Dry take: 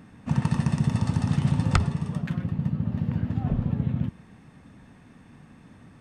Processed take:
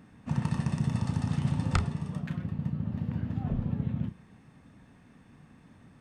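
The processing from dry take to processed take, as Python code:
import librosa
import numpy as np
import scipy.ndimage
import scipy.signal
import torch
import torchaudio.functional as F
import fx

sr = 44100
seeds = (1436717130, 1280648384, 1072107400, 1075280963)

y = fx.doubler(x, sr, ms=33.0, db=-11.0)
y = y * 10.0 ** (-5.5 / 20.0)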